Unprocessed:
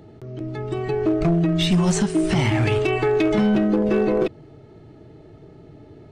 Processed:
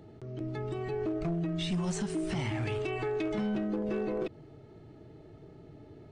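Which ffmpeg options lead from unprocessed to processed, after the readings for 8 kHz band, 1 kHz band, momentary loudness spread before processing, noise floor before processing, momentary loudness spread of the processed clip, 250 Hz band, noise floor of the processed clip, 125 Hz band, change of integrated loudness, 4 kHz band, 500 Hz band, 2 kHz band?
-13.0 dB, -12.5 dB, 10 LU, -46 dBFS, 21 LU, -13.0 dB, -53 dBFS, -12.5 dB, -13.0 dB, -13.0 dB, -12.5 dB, -13.0 dB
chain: -af "alimiter=limit=0.1:level=0:latency=1:release=83,aresample=22050,aresample=44100,volume=0.473"

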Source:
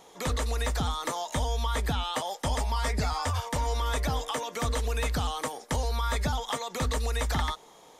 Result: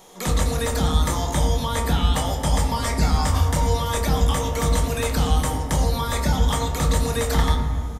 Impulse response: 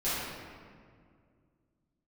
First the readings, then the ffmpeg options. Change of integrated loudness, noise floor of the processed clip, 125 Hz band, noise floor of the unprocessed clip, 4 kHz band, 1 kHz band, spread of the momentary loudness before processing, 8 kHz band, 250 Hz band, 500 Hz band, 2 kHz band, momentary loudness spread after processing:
+8.0 dB, -28 dBFS, +10.0 dB, -54 dBFS, +5.5 dB, +5.5 dB, 3 LU, +8.5 dB, +11.0 dB, +7.5 dB, +4.5 dB, 2 LU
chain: -filter_complex "[0:a]highshelf=f=7200:g=9,asplit=2[s0][s1];[s1]adelay=26,volume=0.398[s2];[s0][s2]amix=inputs=2:normalize=0,asplit=2[s3][s4];[1:a]atrim=start_sample=2205,lowshelf=f=400:g=12[s5];[s4][s5]afir=irnorm=-1:irlink=0,volume=0.211[s6];[s3][s6]amix=inputs=2:normalize=0,volume=1.19"

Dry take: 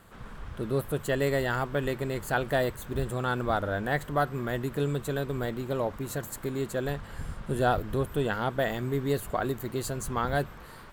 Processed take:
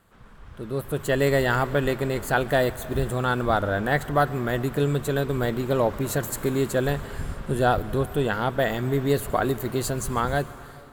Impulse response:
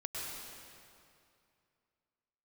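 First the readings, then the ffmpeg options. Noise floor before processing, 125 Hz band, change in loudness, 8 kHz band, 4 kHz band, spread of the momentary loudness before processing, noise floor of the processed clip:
-46 dBFS, +5.0 dB, +5.5 dB, +6.0 dB, +5.5 dB, 8 LU, -45 dBFS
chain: -filter_complex "[0:a]dynaudnorm=f=380:g=5:m=5.96,asplit=2[s0][s1];[1:a]atrim=start_sample=2205,highshelf=f=9400:g=7.5,adelay=139[s2];[s1][s2]afir=irnorm=-1:irlink=0,volume=0.106[s3];[s0][s3]amix=inputs=2:normalize=0,volume=0.473"

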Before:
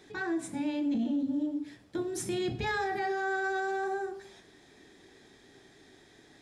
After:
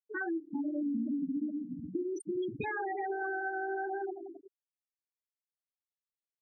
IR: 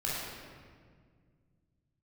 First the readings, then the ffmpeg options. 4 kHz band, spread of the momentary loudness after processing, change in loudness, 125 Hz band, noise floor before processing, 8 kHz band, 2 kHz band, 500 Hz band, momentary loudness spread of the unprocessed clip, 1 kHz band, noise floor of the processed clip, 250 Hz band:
under -15 dB, 6 LU, -3.0 dB, -7.0 dB, -59 dBFS, -15.0 dB, -3.5 dB, -3.0 dB, 7 LU, -3.5 dB, under -85 dBFS, -2.5 dB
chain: -filter_complex "[0:a]highpass=150,lowpass=7600,aemphasis=mode=production:type=50fm,asplit=2[s0][s1];[s1]asplit=6[s2][s3][s4][s5][s6][s7];[s2]adelay=270,afreqshift=-51,volume=0.158[s8];[s3]adelay=540,afreqshift=-102,volume=0.0966[s9];[s4]adelay=810,afreqshift=-153,volume=0.0589[s10];[s5]adelay=1080,afreqshift=-204,volume=0.0359[s11];[s6]adelay=1350,afreqshift=-255,volume=0.0219[s12];[s7]adelay=1620,afreqshift=-306,volume=0.0133[s13];[s8][s9][s10][s11][s12][s13]amix=inputs=6:normalize=0[s14];[s0][s14]amix=inputs=2:normalize=0,acompressor=threshold=0.0141:ratio=6,highshelf=f=3000:g=-4,acontrast=41,asplit=2[s15][s16];[s16]aecho=0:1:414:0.237[s17];[s15][s17]amix=inputs=2:normalize=0,afftfilt=real='re*gte(hypot(re,im),0.0631)':imag='im*gte(hypot(re,im),0.0631)':win_size=1024:overlap=0.75"

